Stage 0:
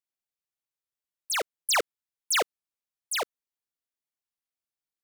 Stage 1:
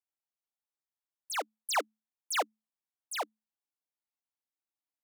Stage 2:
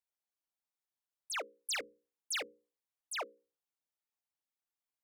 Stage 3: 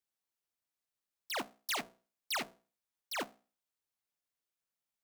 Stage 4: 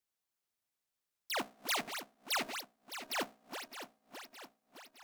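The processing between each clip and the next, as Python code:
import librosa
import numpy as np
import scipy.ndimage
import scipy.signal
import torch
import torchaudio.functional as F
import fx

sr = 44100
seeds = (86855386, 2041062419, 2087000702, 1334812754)

y1 = scipy.signal.sosfilt(scipy.signal.cheby1(6, 9, 210.0, 'highpass', fs=sr, output='sos'), x)
y2 = fx.envelope_sharpen(y1, sr, power=1.5)
y2 = 10.0 ** (-30.0 / 20.0) * (np.abs((y2 / 10.0 ** (-30.0 / 20.0) + 3.0) % 4.0 - 2.0) - 1.0)
y2 = fx.hum_notches(y2, sr, base_hz=60, count=9)
y2 = F.gain(torch.from_numpy(y2), -2.0).numpy()
y3 = fx.cycle_switch(y2, sr, every=2, mode='inverted')
y3 = F.gain(torch.from_numpy(y3), 1.0).numpy()
y4 = fx.reverse_delay_fb(y3, sr, ms=307, feedback_pct=74, wet_db=-9.0)
y4 = F.gain(torch.from_numpy(y4), 1.0).numpy()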